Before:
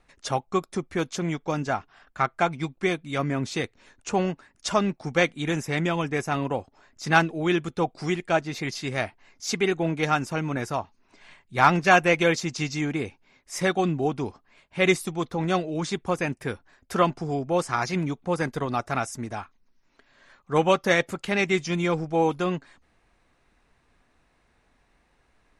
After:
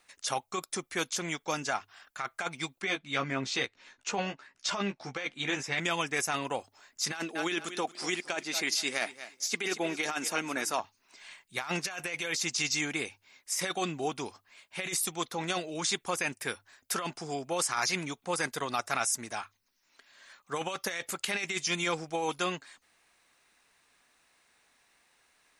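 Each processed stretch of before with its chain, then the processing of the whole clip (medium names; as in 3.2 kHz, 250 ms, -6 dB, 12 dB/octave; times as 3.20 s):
2.82–5.80 s: distance through air 130 m + doubling 15 ms -5 dB
7.12–10.80 s: resonant low shelf 160 Hz -11.5 dB, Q 1.5 + feedback delay 230 ms, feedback 24%, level -17 dB
whole clip: tilt EQ +4 dB/octave; hum notches 50/100 Hz; compressor with a negative ratio -26 dBFS, ratio -1; trim -5 dB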